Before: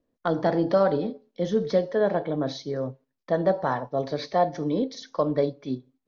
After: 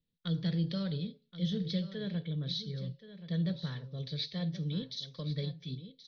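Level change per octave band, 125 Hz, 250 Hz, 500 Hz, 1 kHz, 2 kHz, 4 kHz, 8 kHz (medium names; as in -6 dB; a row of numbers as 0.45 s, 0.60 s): 0.0 dB, -7.0 dB, -21.5 dB, -29.0 dB, -14.0 dB, +2.0 dB, no reading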